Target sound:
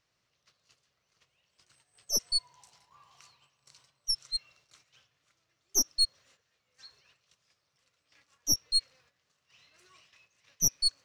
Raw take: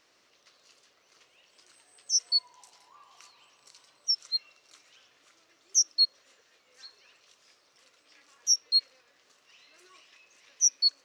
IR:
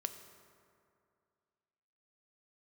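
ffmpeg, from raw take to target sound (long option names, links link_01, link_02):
-af "agate=range=-9dB:threshold=-59dB:ratio=16:detection=peak,lowshelf=frequency=200:width_type=q:width=1.5:gain=13,aeval=exprs='0.266*(cos(1*acos(clip(val(0)/0.266,-1,1)))-cos(1*PI/2))+0.0473*(cos(4*acos(clip(val(0)/0.266,-1,1)))-cos(4*PI/2))':channel_layout=same,volume=-3.5dB"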